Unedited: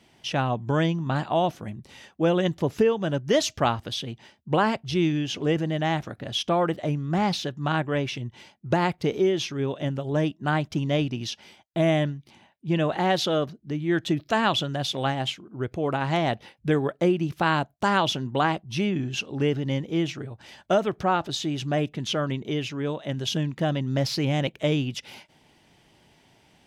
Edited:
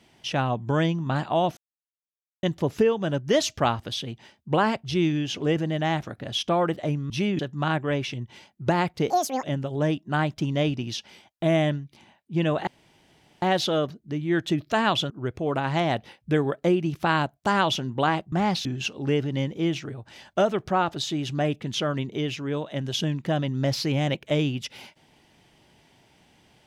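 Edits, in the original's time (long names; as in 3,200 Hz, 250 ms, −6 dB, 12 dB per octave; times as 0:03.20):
0:01.57–0:02.43: silence
0:07.10–0:07.43: swap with 0:18.69–0:18.98
0:09.14–0:09.77: play speed 190%
0:13.01: splice in room tone 0.75 s
0:14.69–0:15.47: remove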